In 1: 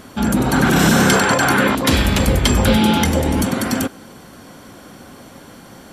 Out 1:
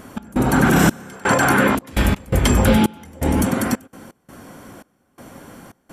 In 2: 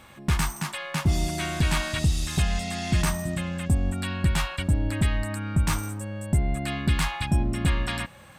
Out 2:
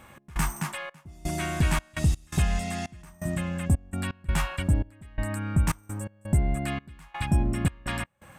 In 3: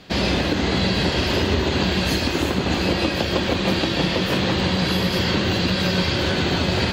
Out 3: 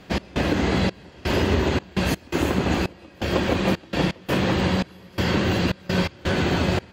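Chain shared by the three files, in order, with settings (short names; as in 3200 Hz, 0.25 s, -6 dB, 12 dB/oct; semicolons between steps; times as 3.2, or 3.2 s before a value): bell 4100 Hz -8 dB 0.94 oct; step gate "x.xxx..xxx." 84 bpm -24 dB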